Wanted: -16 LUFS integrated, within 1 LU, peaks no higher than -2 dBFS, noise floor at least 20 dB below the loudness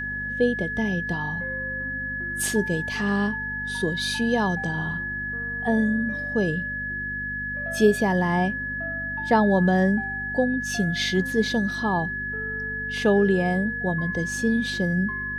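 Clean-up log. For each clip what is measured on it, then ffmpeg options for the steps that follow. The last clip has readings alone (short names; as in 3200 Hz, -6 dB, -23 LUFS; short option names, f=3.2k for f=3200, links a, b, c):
hum 50 Hz; harmonics up to 250 Hz; hum level -36 dBFS; steady tone 1700 Hz; tone level -28 dBFS; loudness -24.5 LUFS; peak -6.0 dBFS; loudness target -16.0 LUFS
-> -af "bandreject=f=50:t=h:w=4,bandreject=f=100:t=h:w=4,bandreject=f=150:t=h:w=4,bandreject=f=200:t=h:w=4,bandreject=f=250:t=h:w=4"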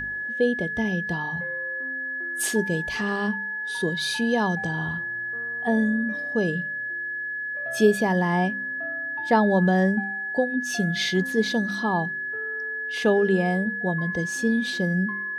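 hum none; steady tone 1700 Hz; tone level -28 dBFS
-> -af "bandreject=f=1.7k:w=30"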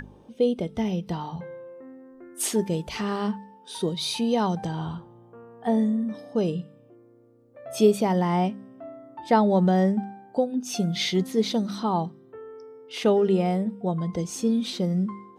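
steady tone none; loudness -25.5 LUFS; peak -7.0 dBFS; loudness target -16.0 LUFS
-> -af "volume=9.5dB,alimiter=limit=-2dB:level=0:latency=1"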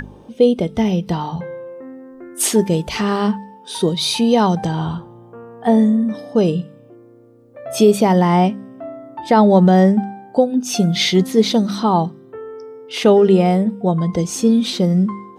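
loudness -16.5 LUFS; peak -2.0 dBFS; noise floor -44 dBFS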